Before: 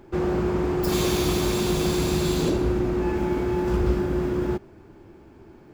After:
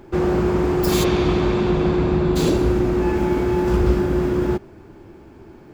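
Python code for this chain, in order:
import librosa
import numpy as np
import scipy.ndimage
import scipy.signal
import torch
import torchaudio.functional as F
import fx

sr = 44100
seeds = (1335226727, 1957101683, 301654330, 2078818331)

y = fx.lowpass(x, sr, hz=fx.line((1.03, 3000.0), (2.35, 1500.0)), slope=12, at=(1.03, 2.35), fade=0.02)
y = F.gain(torch.from_numpy(y), 5.0).numpy()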